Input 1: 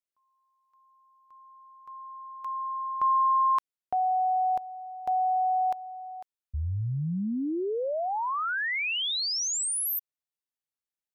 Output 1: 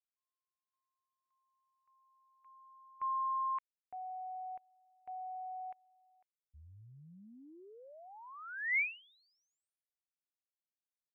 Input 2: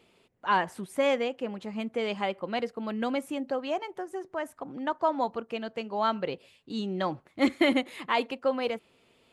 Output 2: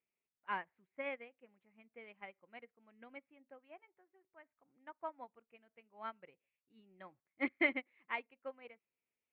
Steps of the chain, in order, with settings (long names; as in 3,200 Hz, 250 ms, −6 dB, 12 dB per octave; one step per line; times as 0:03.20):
transistor ladder low-pass 2,500 Hz, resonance 60%
expander for the loud parts 2.5 to 1, over −43 dBFS